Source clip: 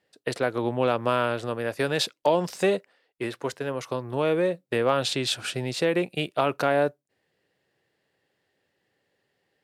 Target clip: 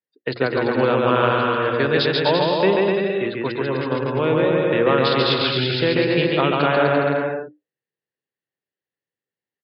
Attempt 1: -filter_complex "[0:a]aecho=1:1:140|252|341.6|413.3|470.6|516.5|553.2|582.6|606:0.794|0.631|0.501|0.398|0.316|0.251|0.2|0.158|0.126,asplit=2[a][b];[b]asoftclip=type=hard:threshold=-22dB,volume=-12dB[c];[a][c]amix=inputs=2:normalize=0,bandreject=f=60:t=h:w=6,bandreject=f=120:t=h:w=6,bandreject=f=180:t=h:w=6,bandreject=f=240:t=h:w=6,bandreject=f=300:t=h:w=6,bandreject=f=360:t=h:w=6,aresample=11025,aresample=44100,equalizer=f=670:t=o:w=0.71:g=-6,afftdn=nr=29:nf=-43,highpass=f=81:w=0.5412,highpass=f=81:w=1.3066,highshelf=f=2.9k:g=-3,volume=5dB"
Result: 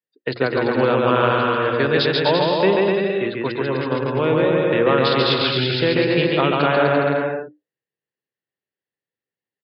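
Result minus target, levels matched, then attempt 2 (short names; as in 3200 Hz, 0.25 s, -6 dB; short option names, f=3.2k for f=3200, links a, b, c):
hard clip: distortion -4 dB
-filter_complex "[0:a]aecho=1:1:140|252|341.6|413.3|470.6|516.5|553.2|582.6|606:0.794|0.631|0.501|0.398|0.316|0.251|0.2|0.158|0.126,asplit=2[a][b];[b]asoftclip=type=hard:threshold=-30.5dB,volume=-12dB[c];[a][c]amix=inputs=2:normalize=0,bandreject=f=60:t=h:w=6,bandreject=f=120:t=h:w=6,bandreject=f=180:t=h:w=6,bandreject=f=240:t=h:w=6,bandreject=f=300:t=h:w=6,bandreject=f=360:t=h:w=6,aresample=11025,aresample=44100,equalizer=f=670:t=o:w=0.71:g=-6,afftdn=nr=29:nf=-43,highpass=f=81:w=0.5412,highpass=f=81:w=1.3066,highshelf=f=2.9k:g=-3,volume=5dB"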